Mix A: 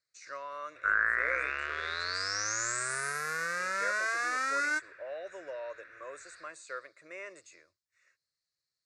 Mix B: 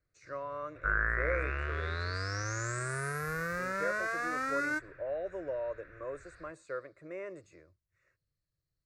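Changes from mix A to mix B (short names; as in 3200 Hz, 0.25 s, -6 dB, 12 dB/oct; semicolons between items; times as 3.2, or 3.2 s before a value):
first sound +7.0 dB; second sound: add tilt shelf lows -3 dB, about 1400 Hz; master: remove weighting filter ITU-R 468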